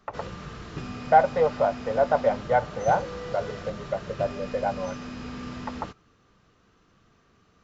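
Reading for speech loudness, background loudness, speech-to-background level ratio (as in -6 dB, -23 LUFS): -25.5 LUFS, -38.0 LUFS, 12.5 dB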